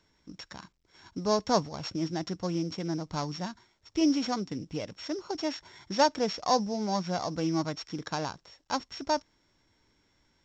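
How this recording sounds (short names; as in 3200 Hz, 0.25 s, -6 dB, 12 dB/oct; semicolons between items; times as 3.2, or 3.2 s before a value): a buzz of ramps at a fixed pitch in blocks of 8 samples; µ-law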